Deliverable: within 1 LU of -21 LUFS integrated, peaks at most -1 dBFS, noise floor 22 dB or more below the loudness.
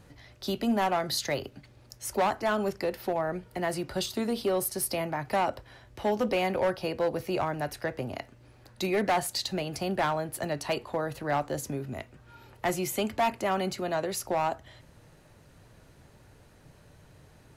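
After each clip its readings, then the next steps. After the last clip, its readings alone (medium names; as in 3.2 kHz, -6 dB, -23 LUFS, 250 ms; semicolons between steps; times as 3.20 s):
clipped samples 1.2%; clipping level -21.0 dBFS; loudness -30.5 LUFS; peak level -21.0 dBFS; loudness target -21.0 LUFS
-> clip repair -21 dBFS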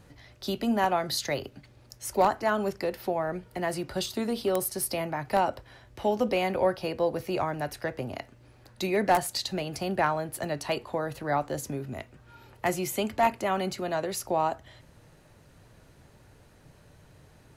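clipped samples 0.0%; loudness -29.5 LUFS; peak level -12.0 dBFS; loudness target -21.0 LUFS
-> trim +8.5 dB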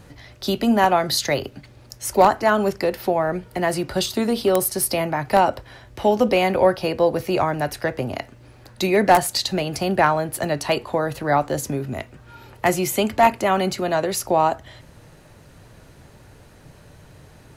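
loudness -21.0 LUFS; peak level -3.5 dBFS; noise floor -48 dBFS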